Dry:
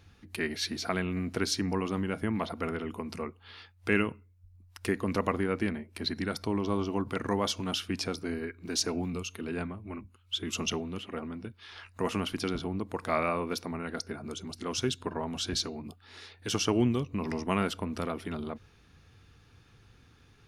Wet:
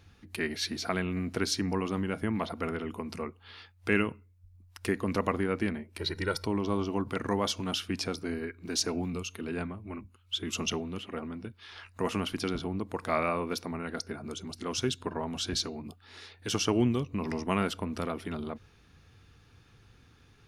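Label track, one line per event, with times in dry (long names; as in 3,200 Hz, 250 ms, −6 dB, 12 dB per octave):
5.990000	6.460000	comb filter 2.1 ms, depth 95%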